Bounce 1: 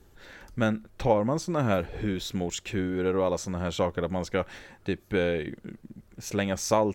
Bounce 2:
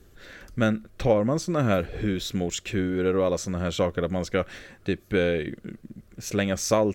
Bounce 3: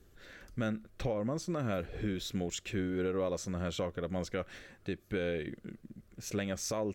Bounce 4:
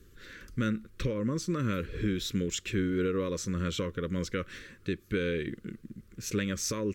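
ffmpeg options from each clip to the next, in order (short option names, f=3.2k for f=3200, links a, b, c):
-af "equalizer=f=880:w=5.9:g=-13,volume=3dB"
-af "alimiter=limit=-17dB:level=0:latency=1:release=205,volume=-7.5dB"
-af "asuperstop=centerf=730:order=4:qfactor=1.2,volume=5dB"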